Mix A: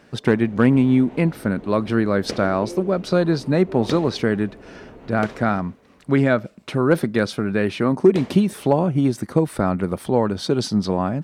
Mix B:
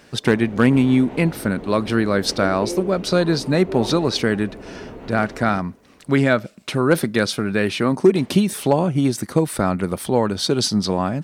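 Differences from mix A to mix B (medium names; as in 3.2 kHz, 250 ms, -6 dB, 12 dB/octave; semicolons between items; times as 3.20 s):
speech: add treble shelf 2.5 kHz +10 dB; first sound +6.0 dB; second sound -7.5 dB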